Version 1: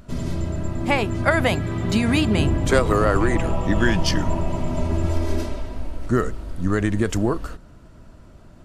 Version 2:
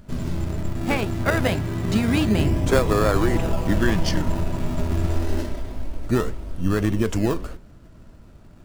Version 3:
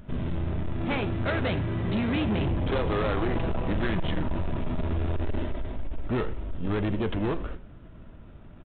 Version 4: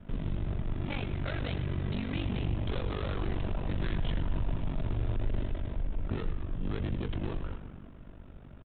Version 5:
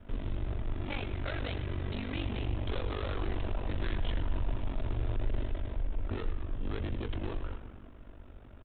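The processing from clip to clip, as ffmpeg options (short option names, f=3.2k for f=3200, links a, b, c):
-filter_complex "[0:a]asplit=2[a][b];[b]acrusher=samples=29:mix=1:aa=0.000001:lfo=1:lforange=29:lforate=0.26,volume=-4dB[c];[a][c]amix=inputs=2:normalize=0,flanger=delay=4.5:depth=7:regen=88:speed=1.7:shape=sinusoidal"
-af "aresample=8000,asoftclip=type=tanh:threshold=-23dB,aresample=44100,aecho=1:1:83:0.112"
-filter_complex "[0:a]asplit=7[a][b][c][d][e][f][g];[b]adelay=111,afreqshift=-75,volume=-12dB[h];[c]adelay=222,afreqshift=-150,volume=-16.9dB[i];[d]adelay=333,afreqshift=-225,volume=-21.8dB[j];[e]adelay=444,afreqshift=-300,volume=-26.6dB[k];[f]adelay=555,afreqshift=-375,volume=-31.5dB[l];[g]adelay=666,afreqshift=-450,volume=-36.4dB[m];[a][h][i][j][k][l][m]amix=inputs=7:normalize=0,aeval=exprs='val(0)*sin(2*PI*24*n/s)':c=same,acrossover=split=150|3000[n][o][p];[o]acompressor=threshold=-42dB:ratio=2[q];[n][q][p]amix=inputs=3:normalize=0"
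-af "equalizer=f=160:t=o:w=0.61:g=-13"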